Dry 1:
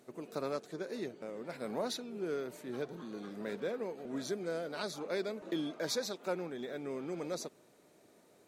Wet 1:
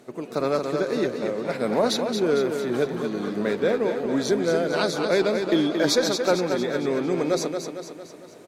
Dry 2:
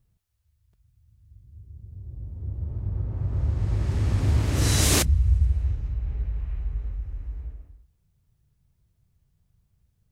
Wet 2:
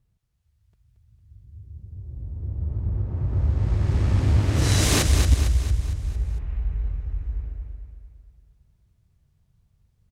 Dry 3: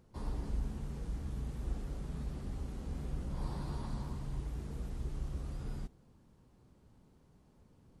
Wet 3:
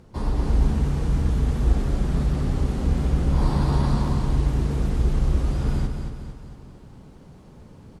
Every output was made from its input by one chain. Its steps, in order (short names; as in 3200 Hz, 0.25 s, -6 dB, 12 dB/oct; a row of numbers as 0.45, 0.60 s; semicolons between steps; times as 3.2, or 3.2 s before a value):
high shelf 8900 Hz -8.5 dB; on a send: feedback echo 0.227 s, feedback 51%, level -6.5 dB; on the sum: added harmonics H 2 -7 dB, 4 -15 dB, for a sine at -7 dBFS; AGC gain up to 3 dB; match loudness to -24 LUFS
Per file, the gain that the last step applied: +11.5, -0.5, +14.0 dB